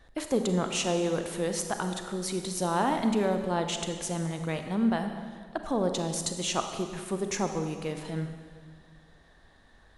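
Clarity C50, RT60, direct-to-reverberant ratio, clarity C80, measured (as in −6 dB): 7.0 dB, 1.8 s, 6.0 dB, 8.0 dB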